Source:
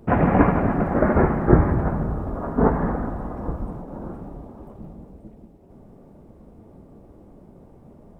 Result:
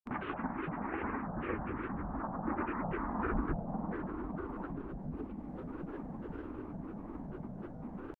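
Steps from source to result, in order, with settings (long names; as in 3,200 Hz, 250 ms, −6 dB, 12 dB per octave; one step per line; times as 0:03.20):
source passing by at 0:03.48, 17 m/s, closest 2 metres
in parallel at +1 dB: upward compression, threshold −46 dBFS
on the sum: octave-band graphic EQ 125/250/500/1,000/2,000 Hz −9/+11/−9/+12/+11 dB
downward compressor 4 to 1, threshold −51 dBFS, peak gain reduction 28.5 dB
high-shelf EQ 2,500 Hz −12 dB
granular cloud 100 ms, grains 20 per second, pitch spread up and down by 7 semitones
level +14.5 dB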